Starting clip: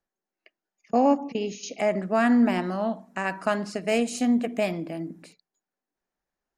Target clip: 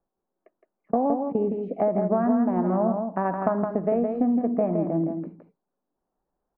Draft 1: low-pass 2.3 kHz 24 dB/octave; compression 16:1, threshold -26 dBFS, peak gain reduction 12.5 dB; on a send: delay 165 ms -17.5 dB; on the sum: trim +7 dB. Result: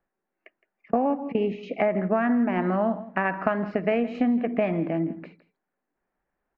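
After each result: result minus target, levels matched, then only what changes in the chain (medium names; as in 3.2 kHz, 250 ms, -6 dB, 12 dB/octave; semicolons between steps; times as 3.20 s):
2 kHz band +13.0 dB; echo-to-direct -12 dB
change: low-pass 1.1 kHz 24 dB/octave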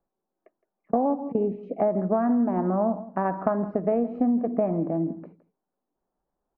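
echo-to-direct -12 dB
change: delay 165 ms -5.5 dB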